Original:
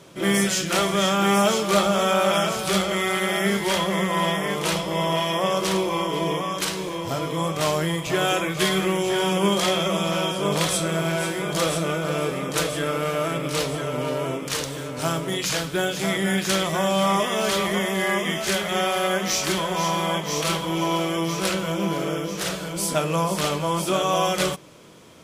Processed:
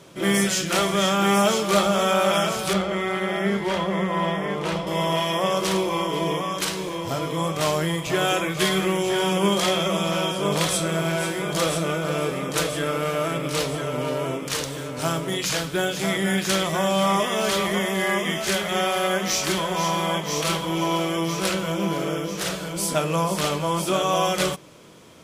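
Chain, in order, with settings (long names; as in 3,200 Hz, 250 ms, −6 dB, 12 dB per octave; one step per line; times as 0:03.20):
0:02.73–0:04.87: low-pass filter 1,700 Hz 6 dB per octave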